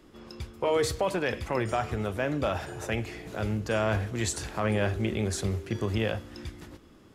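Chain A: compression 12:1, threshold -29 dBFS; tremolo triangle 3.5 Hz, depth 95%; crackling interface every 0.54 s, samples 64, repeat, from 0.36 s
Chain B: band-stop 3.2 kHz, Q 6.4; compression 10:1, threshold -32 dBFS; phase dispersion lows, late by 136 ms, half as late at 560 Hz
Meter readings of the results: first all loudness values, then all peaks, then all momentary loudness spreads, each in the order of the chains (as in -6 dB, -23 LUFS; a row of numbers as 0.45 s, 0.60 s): -39.5 LUFS, -37.5 LUFS; -19.5 dBFS, -22.0 dBFS; 10 LU, 7 LU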